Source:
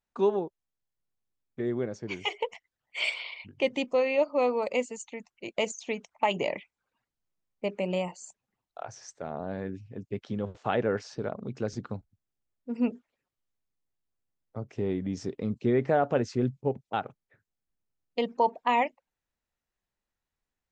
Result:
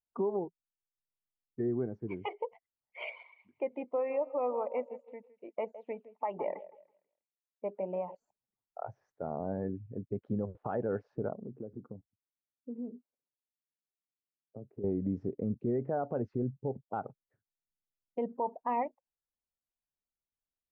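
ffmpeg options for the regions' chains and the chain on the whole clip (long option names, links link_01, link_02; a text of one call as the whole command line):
ffmpeg -i in.wav -filter_complex "[0:a]asettb=1/sr,asplit=3[link_01][link_02][link_03];[link_01]atrim=end=0.444[link_04];[link_02]atrim=start=0.44:end=2.12,asetpts=PTS-STARTPTS,afade=type=in:duration=0.004:curve=qsin,afade=type=out:start_time=1.676:duration=0.004:curve=qsin,equalizer=frequency=550:width=4.7:gain=-13,bandreject=frequency=170:width=5.1[link_05];[link_03]atrim=start=2.116[link_06];[link_04][link_05]acrossfade=duration=0.004:curve1=hsin:curve2=qsin[link_07];[link_07][link_06]acrossfade=duration=0.004:curve1=qsin:curve2=hsin,asettb=1/sr,asplit=3[link_08][link_09][link_10];[link_08]atrim=end=3.234[link_11];[link_09]atrim=start=3.23:end=8.15,asetpts=PTS-STARTPTS,afade=type=in:duration=0.004:curve=qsin,afade=type=out:start_time=4.916:duration=0.004:curve=qsin,acrossover=split=2600[link_12][link_13];[link_13]acompressor=threshold=-52dB:ratio=4:attack=1:release=60[link_14];[link_12][link_14]amix=inputs=2:normalize=0,highpass=frequency=730:poles=1,aecho=1:1:162|324|486|648:0.2|0.0758|0.0288|0.0109,atrim=end_sample=216972[link_15];[link_10]atrim=start=8.146[link_16];[link_11][link_15]acrossfade=duration=0.004:curve1=hsin:curve2=qsin[link_17];[link_17][link_16]acrossfade=duration=0.004:curve1=qsin:curve2=hsin,asettb=1/sr,asplit=3[link_18][link_19][link_20];[link_18]atrim=end=11.334[link_21];[link_19]atrim=start=11.33:end=14.84,asetpts=PTS-STARTPTS,afade=type=in:duration=0.004:curve=qsin,afade=type=out:start_time=3.506:duration=0.004:curve=qsin,acompressor=threshold=-36dB:ratio=6:attack=3.2:release=140:knee=1:detection=peak,bandpass=frequency=350:width_type=q:width=0.61[link_22];[link_20]atrim=start=14.836[link_23];[link_21][link_22]acrossfade=duration=0.004:curve1=hsin:curve2=qsin[link_24];[link_24][link_23]acrossfade=duration=0.004:curve1=qsin:curve2=hsin,lowpass=1200,alimiter=limit=-23.5dB:level=0:latency=1:release=136,afftdn=noise_reduction=13:noise_floor=-45" out.wav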